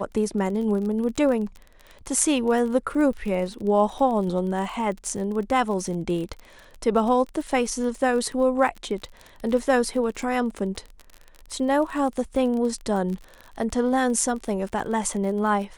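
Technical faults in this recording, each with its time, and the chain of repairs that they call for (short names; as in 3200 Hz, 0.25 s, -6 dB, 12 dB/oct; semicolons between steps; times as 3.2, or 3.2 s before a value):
crackle 35/s -31 dBFS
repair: de-click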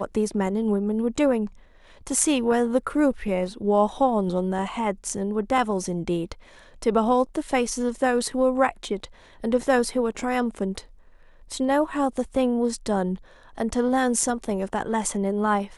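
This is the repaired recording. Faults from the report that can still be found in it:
none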